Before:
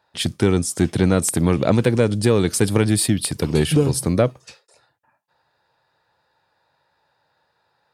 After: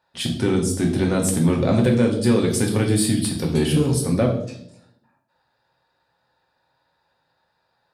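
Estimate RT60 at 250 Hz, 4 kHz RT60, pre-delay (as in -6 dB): 1.0 s, 0.60 s, 3 ms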